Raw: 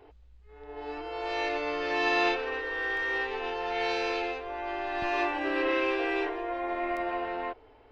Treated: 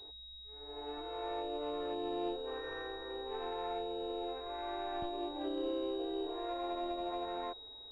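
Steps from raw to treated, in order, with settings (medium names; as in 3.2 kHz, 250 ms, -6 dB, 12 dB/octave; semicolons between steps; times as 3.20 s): low-pass that closes with the level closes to 520 Hz, closed at -26 dBFS; class-D stage that switches slowly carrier 3.8 kHz; trim -5.5 dB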